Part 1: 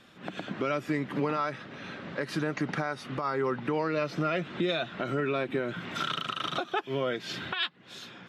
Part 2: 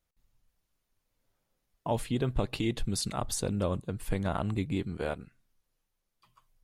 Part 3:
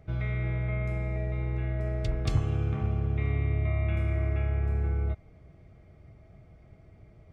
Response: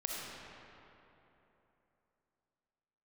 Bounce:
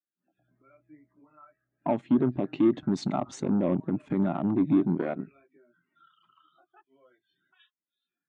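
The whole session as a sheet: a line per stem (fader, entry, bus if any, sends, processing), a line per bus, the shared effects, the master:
-13.0 dB, 0.00 s, no bus, no send, loudest bins only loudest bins 32; detune thickener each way 25 cents
+3.0 dB, 0.00 s, bus A, no send, peaking EQ 250 Hz +15 dB 2.3 oct
-18.5 dB, 0.30 s, bus A, no send, boxcar filter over 24 samples; auto duck -7 dB, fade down 1.00 s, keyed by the second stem
bus A: 0.0 dB, gain riding 0.5 s; peak limiter -12.5 dBFS, peak gain reduction 9 dB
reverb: none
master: Chebyshev shaper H 6 -19 dB, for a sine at -11.5 dBFS; cabinet simulation 200–6600 Hz, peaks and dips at 210 Hz -6 dB, 470 Hz -10 dB, 2.1 kHz +3 dB, 4.8 kHz -7 dB; spectral contrast expander 1.5:1

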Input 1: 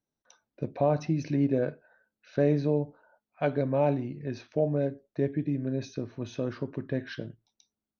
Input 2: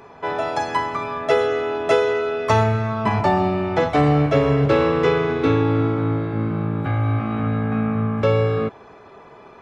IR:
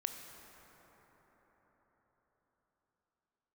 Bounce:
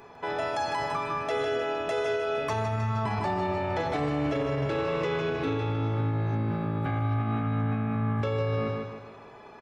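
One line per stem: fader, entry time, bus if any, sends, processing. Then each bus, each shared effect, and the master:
-18.0 dB, 0.00 s, no send, no echo send, none
+2.5 dB, 0.00 s, no send, echo send -6.5 dB, treble shelf 6.3 kHz +4.5 dB; feedback comb 840 Hz, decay 0.16 s, harmonics all, mix 60%; de-hum 49.67 Hz, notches 29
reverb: none
echo: feedback delay 153 ms, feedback 41%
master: peak limiter -20.5 dBFS, peak gain reduction 10.5 dB

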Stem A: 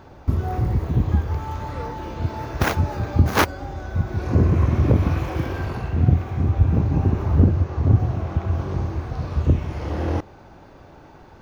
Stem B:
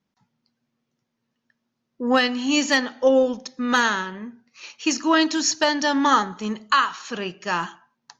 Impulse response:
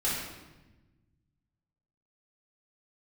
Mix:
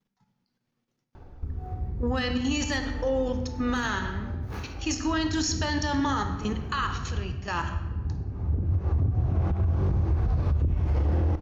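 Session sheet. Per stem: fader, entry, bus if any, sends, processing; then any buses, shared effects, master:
-1.0 dB, 1.15 s, send -23.5 dB, tilt EQ -1.5 dB/octave; compression 12:1, threshold -19 dBFS, peak gain reduction 15 dB; auto duck -21 dB, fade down 0.50 s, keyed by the second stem
-1.5 dB, 0.00 s, send -14 dB, level held to a coarse grid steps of 13 dB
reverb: on, RT60 1.1 s, pre-delay 3 ms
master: bass shelf 73 Hz +9 dB; peak limiter -17.5 dBFS, peak gain reduction 9.5 dB

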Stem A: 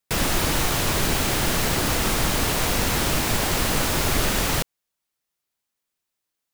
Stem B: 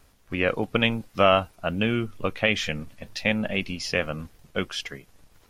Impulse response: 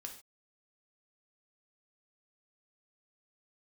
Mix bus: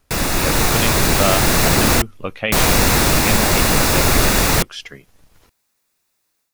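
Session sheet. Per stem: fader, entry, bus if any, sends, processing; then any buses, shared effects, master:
+3.0 dB, 0.00 s, muted 2.02–2.52 s, no send, band-stop 3.1 kHz, Q 7.3
-5.0 dB, 0.00 s, no send, none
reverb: none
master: level rider gain up to 10 dB

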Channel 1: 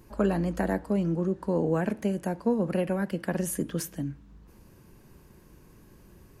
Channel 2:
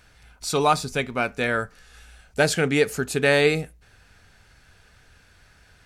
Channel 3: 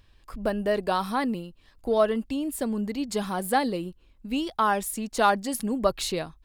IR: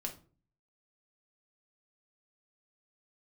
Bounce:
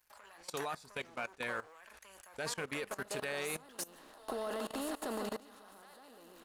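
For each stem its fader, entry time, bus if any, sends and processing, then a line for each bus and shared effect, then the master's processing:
-4.0 dB, 0.00 s, bus A, no send, no echo send, treble shelf 5.3 kHz +5.5 dB; waveshaping leveller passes 3
-11.0 dB, 0.00 s, no bus, no send, no echo send, none
3.54 s -18.5 dB -> 3.94 s -7 dB -> 5.04 s -7 dB -> 5.45 s -19.5 dB, 2.30 s, bus A, no send, echo send -4.5 dB, spectral levelling over time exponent 0.4; de-esser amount 45%; peaking EQ 330 Hz +5.5 dB 1.8 oct
bus A: 0.0 dB, high-pass 1 kHz 12 dB/octave; compression 5:1, threshold -39 dBFS, peak gain reduction 15.5 dB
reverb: none
echo: feedback delay 146 ms, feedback 35%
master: bass shelf 370 Hz -8.5 dB; level held to a coarse grid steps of 19 dB

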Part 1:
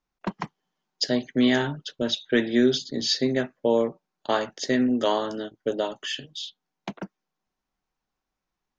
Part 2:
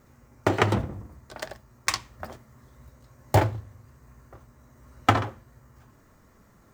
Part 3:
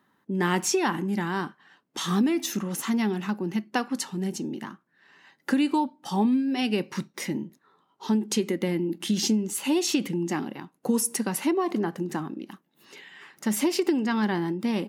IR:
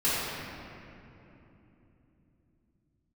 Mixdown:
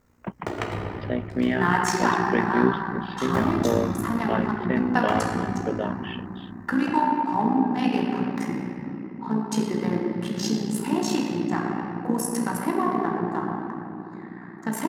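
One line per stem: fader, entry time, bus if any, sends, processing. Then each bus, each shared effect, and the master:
0.0 dB, 0.00 s, no send, steep low-pass 2.8 kHz 36 dB/octave
-5.5 dB, 0.00 s, send -12.5 dB, auto duck -9 dB, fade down 1.80 s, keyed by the first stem
-5.0 dB, 1.20 s, send -7.5 dB, local Wiener filter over 15 samples; high-order bell 1.1 kHz +9 dB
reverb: on, RT60 3.2 s, pre-delay 3 ms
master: AM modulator 60 Hz, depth 50%

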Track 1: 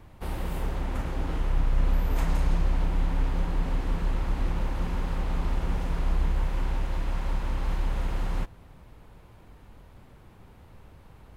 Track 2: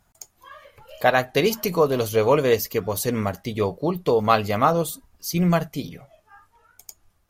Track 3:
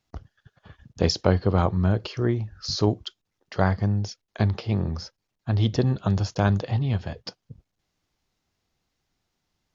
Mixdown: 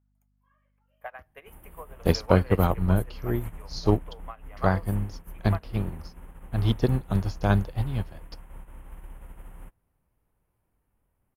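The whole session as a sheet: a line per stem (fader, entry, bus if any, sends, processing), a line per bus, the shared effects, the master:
+2.0 dB, 1.25 s, bus A, no send, none
0.0 dB, 0.00 s, bus A, no send, three-band isolator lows -22 dB, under 600 Hz, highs -18 dB, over 3 kHz; hum 50 Hz, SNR 15 dB
+2.5 dB, 1.05 s, no bus, no send, none
bus A: 0.0 dB, FFT filter 1.9 kHz 0 dB, 3.1 kHz -3 dB, 4.5 kHz -24 dB, 10 kHz +13 dB; compression 10:1, threshold -21 dBFS, peak gain reduction 9.5 dB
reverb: none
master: upward expansion 2.5:1, over -31 dBFS

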